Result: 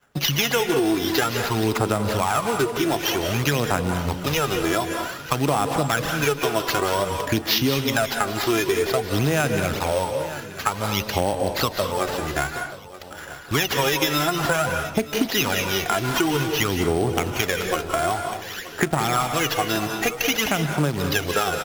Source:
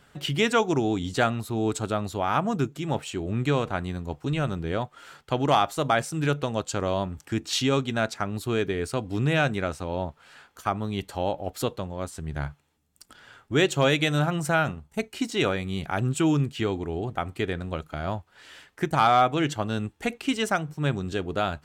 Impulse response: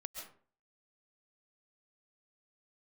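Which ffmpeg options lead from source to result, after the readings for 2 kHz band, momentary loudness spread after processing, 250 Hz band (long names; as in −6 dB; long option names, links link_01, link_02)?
+6.0 dB, 5 LU, +2.5 dB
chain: -filter_complex "[0:a]acrusher=bits=5:mode=log:mix=0:aa=0.000001,agate=range=-33dB:threshold=-45dB:ratio=3:detection=peak,aphaser=in_gain=1:out_gain=1:delay=3:decay=0.7:speed=0.53:type=sinusoidal,lowshelf=frequency=380:gain=-11.5,acrossover=split=250|5600[link_01][link_02][link_03];[link_01]acompressor=threshold=-33dB:ratio=4[link_04];[link_02]acompressor=threshold=-30dB:ratio=4[link_05];[link_03]acompressor=threshold=-43dB:ratio=4[link_06];[link_04][link_05][link_06]amix=inputs=3:normalize=0,aecho=1:1:927|1854|2781:0.112|0.0471|0.0198,acrusher=samples=5:mix=1:aa=0.000001,asplit=2[link_07][link_08];[1:a]atrim=start_sample=2205,asetrate=33516,aresample=44100[link_09];[link_08][link_09]afir=irnorm=-1:irlink=0,volume=3.5dB[link_10];[link_07][link_10]amix=inputs=2:normalize=0,acompressor=threshold=-26dB:ratio=2.5,volume=7dB"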